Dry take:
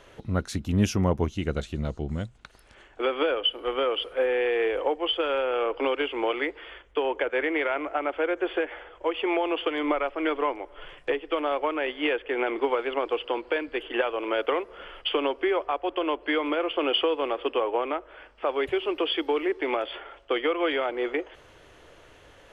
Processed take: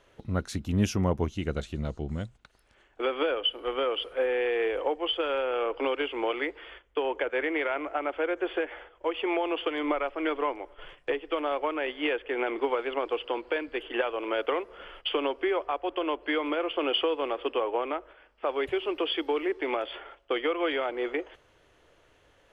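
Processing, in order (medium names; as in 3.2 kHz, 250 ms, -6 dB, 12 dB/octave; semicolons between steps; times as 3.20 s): gate -44 dBFS, range -7 dB; trim -2.5 dB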